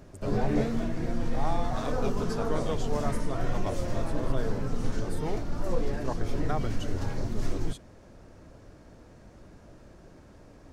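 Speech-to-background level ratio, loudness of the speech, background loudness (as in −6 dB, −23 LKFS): −5.0 dB, −38.0 LKFS, −33.0 LKFS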